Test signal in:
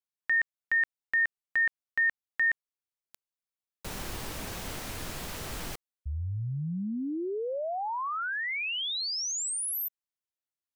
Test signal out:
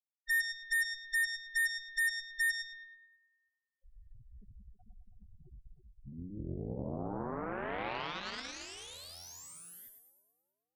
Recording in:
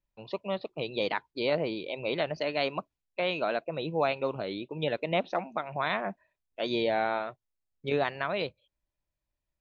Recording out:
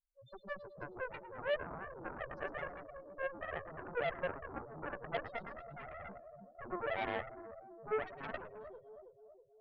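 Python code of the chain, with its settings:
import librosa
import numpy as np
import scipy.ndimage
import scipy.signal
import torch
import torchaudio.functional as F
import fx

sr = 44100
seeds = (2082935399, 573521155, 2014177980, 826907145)

y = fx.spec_topn(x, sr, count=1)
y = fx.echo_split(y, sr, split_hz=650.0, low_ms=323, high_ms=107, feedback_pct=52, wet_db=-6.5)
y = fx.cheby_harmonics(y, sr, harmonics=(3, 4, 7, 8), levels_db=(-19, -23, -14, -25), full_scale_db=-24.5)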